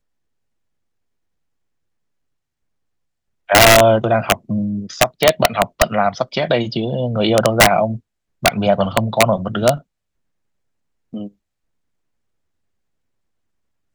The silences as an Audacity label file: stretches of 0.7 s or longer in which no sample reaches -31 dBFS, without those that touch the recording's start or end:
9.790000	11.140000	silence